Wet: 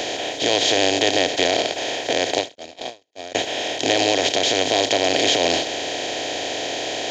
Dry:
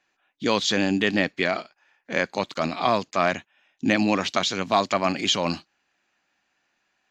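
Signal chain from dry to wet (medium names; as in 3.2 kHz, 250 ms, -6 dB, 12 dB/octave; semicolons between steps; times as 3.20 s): spectral levelling over time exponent 0.2; peak limiter -2 dBFS, peak gain reduction 4.5 dB; static phaser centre 490 Hz, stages 4; 2.55–3.35 s: gate -15 dBFS, range -52 dB; endings held to a fixed fall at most 240 dB/s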